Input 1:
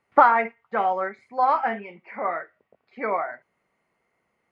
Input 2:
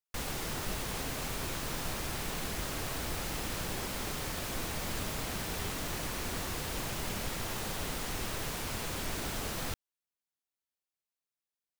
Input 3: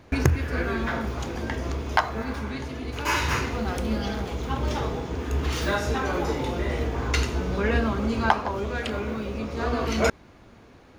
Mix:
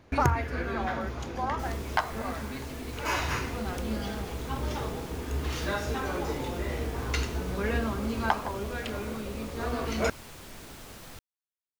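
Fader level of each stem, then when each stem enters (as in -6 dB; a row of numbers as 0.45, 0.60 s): -12.0, -9.5, -5.5 dB; 0.00, 1.45, 0.00 s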